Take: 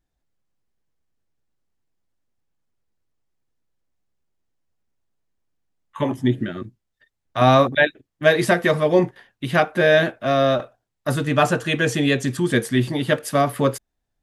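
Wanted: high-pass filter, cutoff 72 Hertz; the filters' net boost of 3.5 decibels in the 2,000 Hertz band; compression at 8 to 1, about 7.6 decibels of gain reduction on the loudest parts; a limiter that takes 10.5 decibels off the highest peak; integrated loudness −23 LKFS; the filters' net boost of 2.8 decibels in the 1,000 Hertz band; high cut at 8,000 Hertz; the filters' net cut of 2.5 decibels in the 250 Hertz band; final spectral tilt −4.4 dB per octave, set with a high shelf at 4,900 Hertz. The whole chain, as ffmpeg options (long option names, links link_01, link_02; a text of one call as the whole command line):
ffmpeg -i in.wav -af "highpass=72,lowpass=8000,equalizer=frequency=250:width_type=o:gain=-3.5,equalizer=frequency=1000:width_type=o:gain=3.5,equalizer=frequency=2000:width_type=o:gain=4,highshelf=frequency=4900:gain=-5.5,acompressor=threshold=-16dB:ratio=8,volume=3.5dB,alimiter=limit=-11.5dB:level=0:latency=1" out.wav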